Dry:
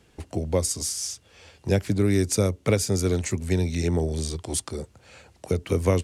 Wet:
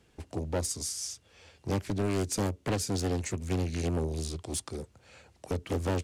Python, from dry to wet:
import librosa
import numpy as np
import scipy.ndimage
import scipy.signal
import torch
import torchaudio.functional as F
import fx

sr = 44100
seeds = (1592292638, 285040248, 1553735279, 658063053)

y = np.clip(x, -10.0 ** (-18.5 / 20.0), 10.0 ** (-18.5 / 20.0))
y = fx.doppler_dist(y, sr, depth_ms=0.7)
y = y * librosa.db_to_amplitude(-5.5)